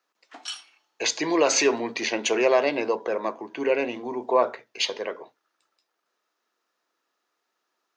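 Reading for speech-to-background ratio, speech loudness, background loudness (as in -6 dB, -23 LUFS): 12.5 dB, -24.5 LUFS, -37.0 LUFS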